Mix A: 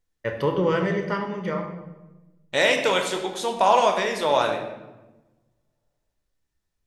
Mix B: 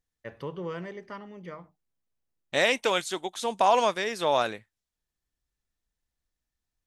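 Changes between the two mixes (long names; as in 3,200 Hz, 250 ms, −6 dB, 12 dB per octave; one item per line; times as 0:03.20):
first voice −10.0 dB
reverb: off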